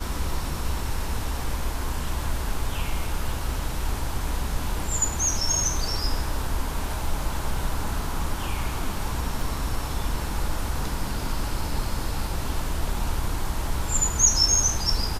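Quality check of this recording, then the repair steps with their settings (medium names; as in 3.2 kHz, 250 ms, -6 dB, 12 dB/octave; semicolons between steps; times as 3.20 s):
9.41 s: dropout 2.9 ms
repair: interpolate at 9.41 s, 2.9 ms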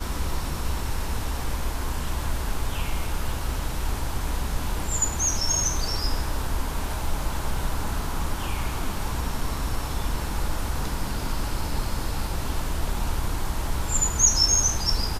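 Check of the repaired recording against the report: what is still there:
nothing left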